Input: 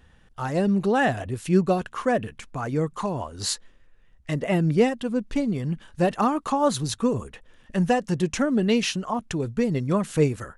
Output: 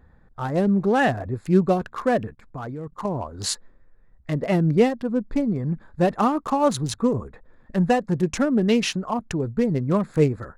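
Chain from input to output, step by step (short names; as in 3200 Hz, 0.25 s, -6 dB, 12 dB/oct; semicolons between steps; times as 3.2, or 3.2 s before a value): Wiener smoothing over 15 samples; 2.33–3.05 level quantiser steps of 17 dB; gain +2 dB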